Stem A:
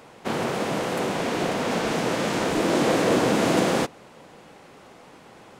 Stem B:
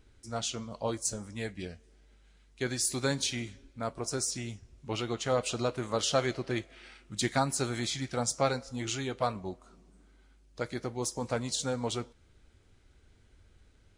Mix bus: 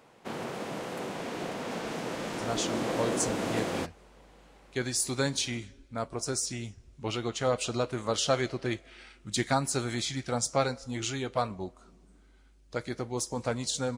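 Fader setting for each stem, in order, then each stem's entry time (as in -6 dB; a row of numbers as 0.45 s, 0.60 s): -10.5 dB, +1.0 dB; 0.00 s, 2.15 s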